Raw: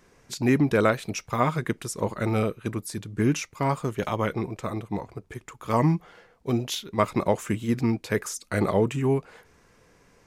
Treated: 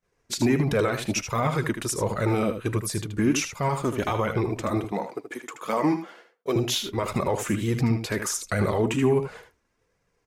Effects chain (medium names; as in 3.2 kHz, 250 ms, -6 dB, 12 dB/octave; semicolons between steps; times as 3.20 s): 4.84–6.56 s: high-pass 220 Hz 24 dB/octave; expander -45 dBFS; peak limiter -19 dBFS, peak gain reduction 11.5 dB; flange 1.4 Hz, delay 1.3 ms, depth 2.4 ms, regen -28%; on a send: delay 78 ms -9 dB; on the sum: trim +9 dB